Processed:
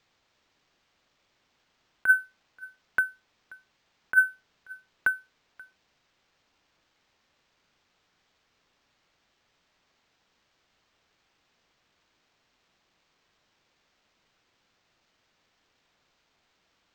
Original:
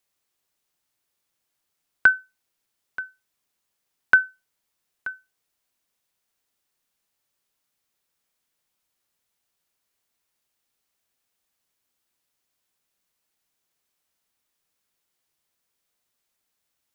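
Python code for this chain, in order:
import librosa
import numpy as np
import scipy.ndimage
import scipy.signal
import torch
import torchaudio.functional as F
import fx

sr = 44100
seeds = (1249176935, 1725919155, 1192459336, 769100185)

p1 = fx.over_compress(x, sr, threshold_db=-20.0, ratio=-0.5)
p2 = p1 + fx.echo_single(p1, sr, ms=532, db=-23.5, dry=0)
p3 = np.interp(np.arange(len(p2)), np.arange(len(p2))[::4], p2[::4])
y = p3 * 10.0 ** (3.0 / 20.0)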